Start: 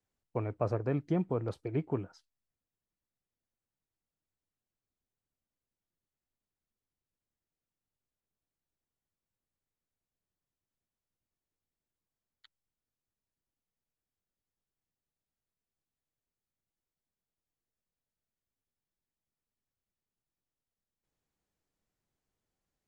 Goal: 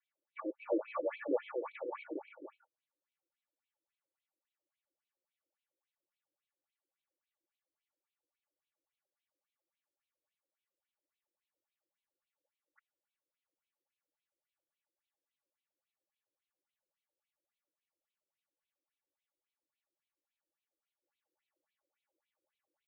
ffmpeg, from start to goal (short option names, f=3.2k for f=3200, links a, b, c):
-af "aecho=1:1:3.5:0.85,aecho=1:1:231|311|332|495|528:0.501|0.355|0.531|0.126|0.224,afftfilt=real='re*between(b*sr/1024,380*pow(3100/380,0.5+0.5*sin(2*PI*3.6*pts/sr))/1.41,380*pow(3100/380,0.5+0.5*sin(2*PI*3.6*pts/sr))*1.41)':imag='im*between(b*sr/1024,380*pow(3100/380,0.5+0.5*sin(2*PI*3.6*pts/sr))/1.41,380*pow(3100/380,0.5+0.5*sin(2*PI*3.6*pts/sr))*1.41)':win_size=1024:overlap=0.75,volume=2.5dB"